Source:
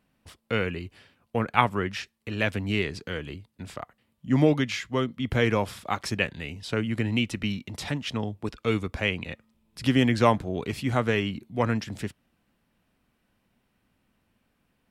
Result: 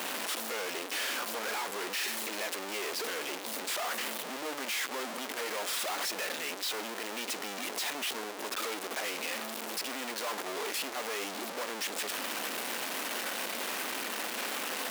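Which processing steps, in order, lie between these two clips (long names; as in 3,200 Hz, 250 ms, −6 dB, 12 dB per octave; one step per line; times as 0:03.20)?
sign of each sample alone
Bessel high-pass filter 440 Hz, order 6
level −4 dB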